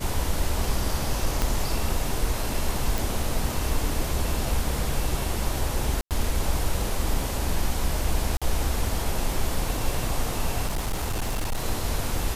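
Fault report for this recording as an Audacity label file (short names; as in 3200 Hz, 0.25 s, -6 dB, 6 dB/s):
1.420000	1.420000	pop -9 dBFS
2.980000	2.980000	pop
6.010000	6.110000	gap 98 ms
8.370000	8.420000	gap 46 ms
10.660000	11.640000	clipped -22.5 dBFS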